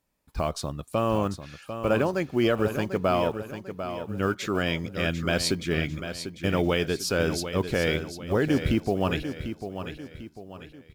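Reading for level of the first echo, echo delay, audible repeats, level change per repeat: −9.5 dB, 746 ms, 4, −7.5 dB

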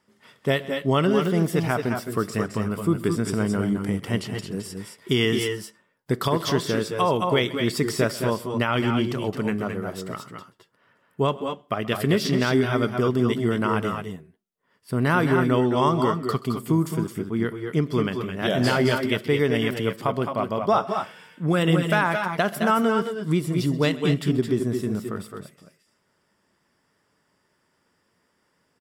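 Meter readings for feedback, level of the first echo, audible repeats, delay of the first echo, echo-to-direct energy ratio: repeats not evenly spaced, −19.5 dB, 2, 130 ms, −5.0 dB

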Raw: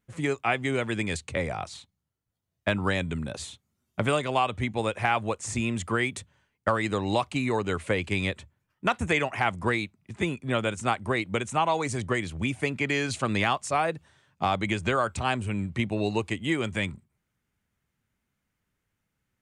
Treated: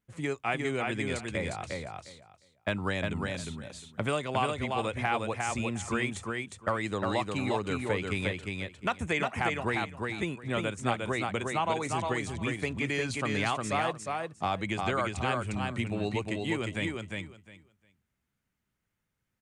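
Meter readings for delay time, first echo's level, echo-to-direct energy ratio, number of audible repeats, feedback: 355 ms, −3.5 dB, −3.5 dB, 3, 17%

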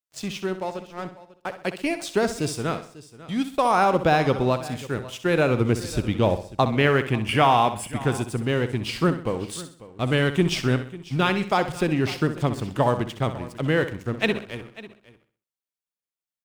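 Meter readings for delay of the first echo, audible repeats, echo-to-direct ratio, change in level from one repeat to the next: 64 ms, 5, −10.0 dB, repeats not evenly spaced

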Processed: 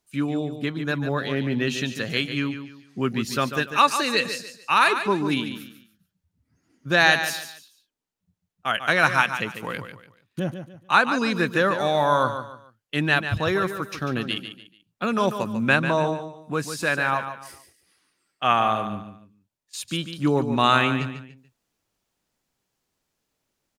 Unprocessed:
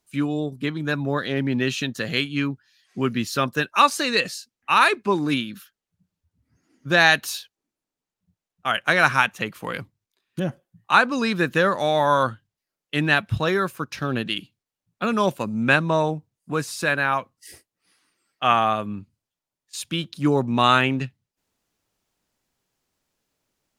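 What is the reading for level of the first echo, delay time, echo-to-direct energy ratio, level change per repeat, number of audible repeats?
−9.5 dB, 145 ms, −9.0 dB, −10.0 dB, 3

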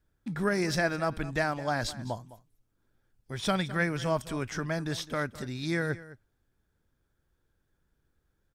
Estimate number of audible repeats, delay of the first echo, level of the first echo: 1, 209 ms, −17.0 dB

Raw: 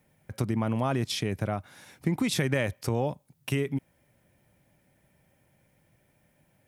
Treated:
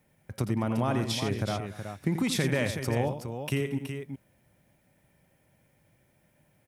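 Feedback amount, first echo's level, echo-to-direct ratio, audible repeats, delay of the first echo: repeats not evenly spaced, −9.0 dB, −5.5 dB, 3, 85 ms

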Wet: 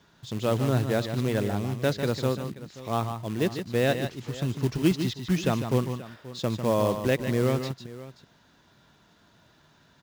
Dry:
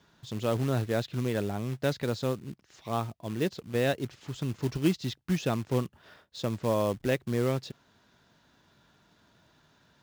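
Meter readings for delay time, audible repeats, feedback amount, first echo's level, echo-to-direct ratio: 149 ms, 2, repeats not evenly spaced, −7.5 dB, −7.5 dB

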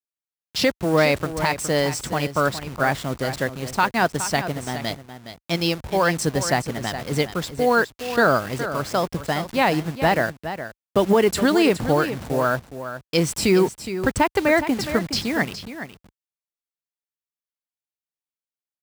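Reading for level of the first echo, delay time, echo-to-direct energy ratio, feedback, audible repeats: −11.0 dB, 416 ms, −11.0 dB, repeats not evenly spaced, 1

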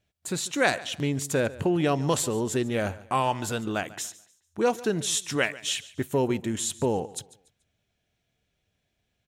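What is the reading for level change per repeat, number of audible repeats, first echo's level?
−10.0 dB, 2, −19.0 dB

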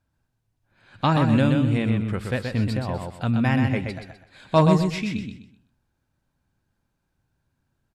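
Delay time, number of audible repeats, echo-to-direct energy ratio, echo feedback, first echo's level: 126 ms, 3, −4.5 dB, 29%, −5.0 dB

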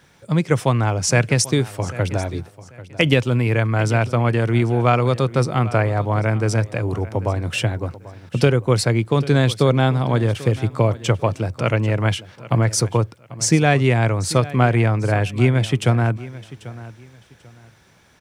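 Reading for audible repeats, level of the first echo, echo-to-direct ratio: 2, −17.5 dB, −17.5 dB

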